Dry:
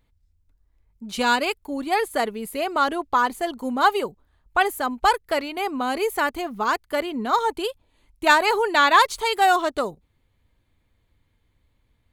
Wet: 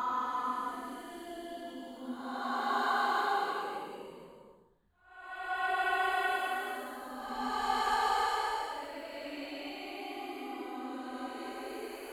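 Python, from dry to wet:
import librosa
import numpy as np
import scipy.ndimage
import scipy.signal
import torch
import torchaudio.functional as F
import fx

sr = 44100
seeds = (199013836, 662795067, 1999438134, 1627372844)

y = fx.level_steps(x, sr, step_db=17)
y = fx.paulstretch(y, sr, seeds[0], factor=4.1, window_s=0.5, from_s=3.12)
y = y * librosa.db_to_amplitude(-7.0)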